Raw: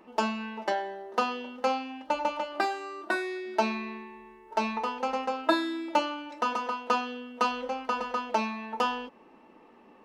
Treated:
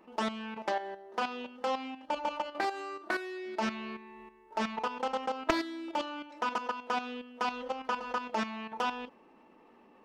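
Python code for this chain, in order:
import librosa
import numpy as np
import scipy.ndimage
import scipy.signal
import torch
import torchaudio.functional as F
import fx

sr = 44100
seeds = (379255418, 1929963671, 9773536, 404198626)

y = fx.level_steps(x, sr, step_db=10)
y = fx.doppler_dist(y, sr, depth_ms=0.46)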